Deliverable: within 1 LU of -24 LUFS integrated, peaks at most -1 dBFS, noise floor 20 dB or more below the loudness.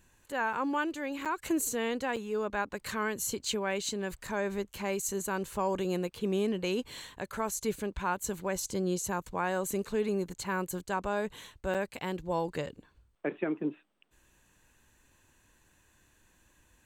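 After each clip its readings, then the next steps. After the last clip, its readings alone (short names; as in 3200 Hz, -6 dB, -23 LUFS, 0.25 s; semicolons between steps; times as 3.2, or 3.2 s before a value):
dropouts 4; longest dropout 6.6 ms; loudness -33.5 LUFS; peak -20.0 dBFS; loudness target -24.0 LUFS
-> interpolate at 0.53/1.25/2.16/11.74, 6.6 ms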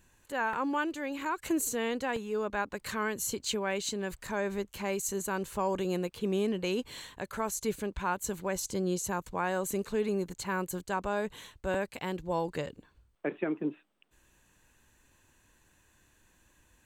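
dropouts 0; loudness -33.5 LUFS; peak -20.0 dBFS; loudness target -24.0 LUFS
-> gain +9.5 dB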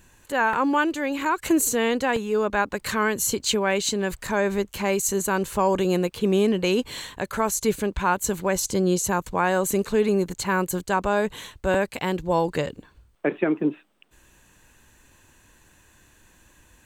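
loudness -24.0 LUFS; peak -10.5 dBFS; noise floor -58 dBFS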